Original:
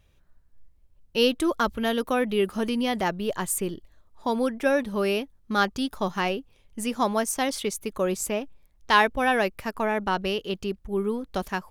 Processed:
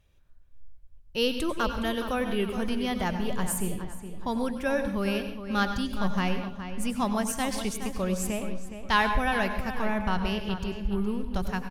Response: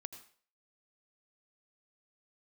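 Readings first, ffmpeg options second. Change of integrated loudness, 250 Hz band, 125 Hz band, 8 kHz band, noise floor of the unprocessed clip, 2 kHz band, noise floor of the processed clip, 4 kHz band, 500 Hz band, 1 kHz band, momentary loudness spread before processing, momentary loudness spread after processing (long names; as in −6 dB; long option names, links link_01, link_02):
−3.0 dB, −0.5 dB, +3.5 dB, −3.0 dB, −61 dBFS, −3.0 dB, −50 dBFS, −3.0 dB, −5.5 dB, −3.5 dB, 9 LU, 7 LU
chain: -filter_complex "[0:a]asubboost=boost=7.5:cutoff=130,asplit=2[link_01][link_02];[link_02]adelay=417,lowpass=frequency=4000:poles=1,volume=-10dB,asplit=2[link_03][link_04];[link_04]adelay=417,lowpass=frequency=4000:poles=1,volume=0.36,asplit=2[link_05][link_06];[link_06]adelay=417,lowpass=frequency=4000:poles=1,volume=0.36,asplit=2[link_07][link_08];[link_08]adelay=417,lowpass=frequency=4000:poles=1,volume=0.36[link_09];[link_01][link_03][link_05][link_07][link_09]amix=inputs=5:normalize=0[link_10];[1:a]atrim=start_sample=2205,afade=type=out:start_time=0.27:duration=0.01,atrim=end_sample=12348,asetrate=38367,aresample=44100[link_11];[link_10][link_11]afir=irnorm=-1:irlink=0"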